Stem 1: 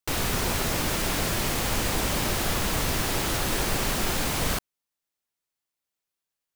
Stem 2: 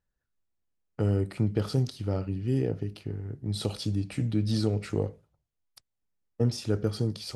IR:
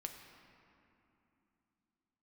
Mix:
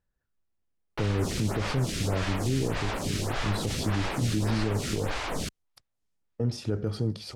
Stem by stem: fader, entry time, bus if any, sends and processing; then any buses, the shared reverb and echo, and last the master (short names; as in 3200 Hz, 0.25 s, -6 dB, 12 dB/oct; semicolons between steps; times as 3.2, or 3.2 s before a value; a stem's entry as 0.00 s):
-1.0 dB, 0.90 s, no send, LPF 7600 Hz 12 dB/oct; photocell phaser 1.7 Hz
+2.5 dB, 0.00 s, no send, high shelf 3600 Hz -8 dB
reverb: off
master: limiter -18 dBFS, peak gain reduction 8 dB